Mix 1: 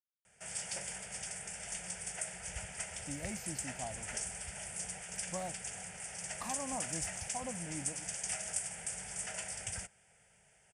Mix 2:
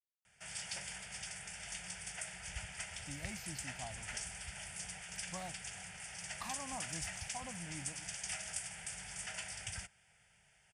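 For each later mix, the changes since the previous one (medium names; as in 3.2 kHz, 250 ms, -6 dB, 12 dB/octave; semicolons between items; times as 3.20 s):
master: add graphic EQ 250/500/4000/8000 Hz -5/-9/+5/-7 dB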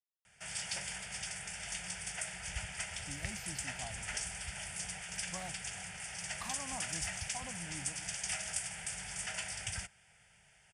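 background +4.0 dB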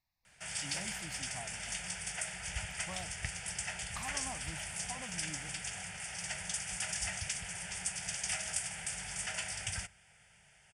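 speech: entry -2.45 s; background: send on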